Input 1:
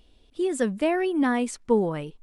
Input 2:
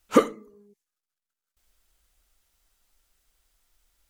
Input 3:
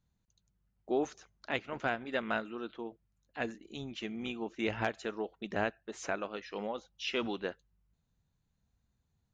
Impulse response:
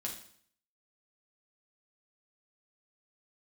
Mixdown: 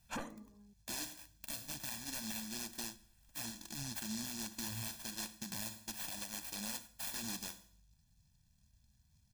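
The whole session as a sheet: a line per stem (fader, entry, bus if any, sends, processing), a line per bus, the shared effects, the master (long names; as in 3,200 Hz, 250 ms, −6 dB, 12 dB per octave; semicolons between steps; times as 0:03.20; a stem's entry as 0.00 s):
muted
−2.0 dB, 0.00 s, no bus, no send, downward compressor 10 to 1, threshold −23 dBFS, peak gain reduction 13 dB; tube saturation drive 25 dB, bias 0.55
+2.0 dB, 0.00 s, bus A, send −17 dB, high-shelf EQ 9,900 Hz +8.5 dB; short delay modulated by noise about 5,300 Hz, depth 0.47 ms
bus A: 0.0 dB, downward compressor, threshold −41 dBFS, peak gain reduction 15.5 dB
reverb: on, RT60 0.60 s, pre-delay 5 ms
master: comb filter 1.2 ms, depth 85%; brickwall limiter −31 dBFS, peak gain reduction 11 dB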